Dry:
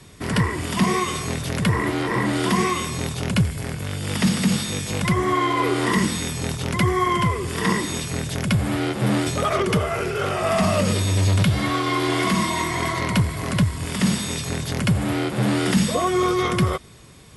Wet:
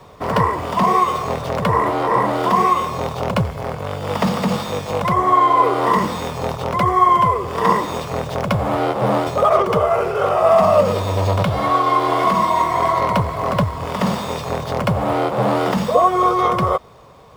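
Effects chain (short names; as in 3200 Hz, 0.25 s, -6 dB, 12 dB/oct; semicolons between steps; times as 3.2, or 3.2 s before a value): median filter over 5 samples; band shelf 750 Hz +13.5 dB; in parallel at -1.5 dB: vocal rider within 3 dB 0.5 s; on the sum: gain -7.5 dB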